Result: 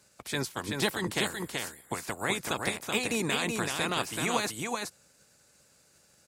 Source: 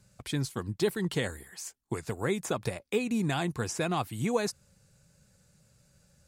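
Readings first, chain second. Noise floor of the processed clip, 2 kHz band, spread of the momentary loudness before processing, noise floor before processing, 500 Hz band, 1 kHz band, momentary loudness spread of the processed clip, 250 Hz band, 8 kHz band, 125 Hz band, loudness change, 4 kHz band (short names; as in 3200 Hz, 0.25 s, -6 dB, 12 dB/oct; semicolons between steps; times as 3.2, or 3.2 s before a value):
-64 dBFS, +6.5 dB, 9 LU, -68 dBFS, -2.5 dB, +3.0 dB, 7 LU, -2.5 dB, +4.5 dB, -5.0 dB, +1.0 dB, +7.0 dB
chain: spectral limiter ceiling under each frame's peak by 19 dB; HPF 63 Hz; on a send: echo 0.379 s -4 dB; on the sum: gain -1 dB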